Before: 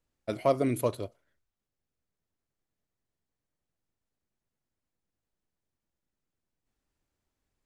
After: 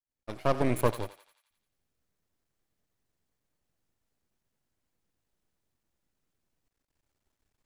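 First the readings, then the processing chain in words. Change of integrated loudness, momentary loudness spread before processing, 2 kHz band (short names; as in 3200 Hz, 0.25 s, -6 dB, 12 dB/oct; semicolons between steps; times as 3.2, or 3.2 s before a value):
-0.5 dB, 15 LU, +5.0 dB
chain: opening faded in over 0.80 s; half-wave rectifier; thinning echo 87 ms, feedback 59%, high-pass 950 Hz, level -12 dB; gain +5.5 dB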